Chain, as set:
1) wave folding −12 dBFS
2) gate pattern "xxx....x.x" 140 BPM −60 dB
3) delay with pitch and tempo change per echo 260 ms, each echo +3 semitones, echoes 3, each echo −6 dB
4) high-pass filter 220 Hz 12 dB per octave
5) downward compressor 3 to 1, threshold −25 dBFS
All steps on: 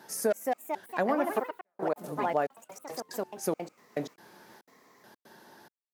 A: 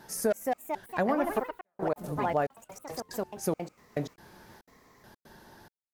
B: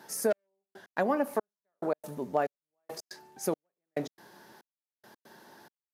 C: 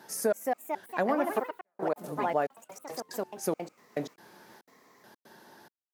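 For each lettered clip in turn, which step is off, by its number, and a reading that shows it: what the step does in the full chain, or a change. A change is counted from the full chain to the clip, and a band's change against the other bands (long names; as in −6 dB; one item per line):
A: 4, 125 Hz band +6.5 dB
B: 3, change in integrated loudness −1.0 LU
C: 1, distortion level −16 dB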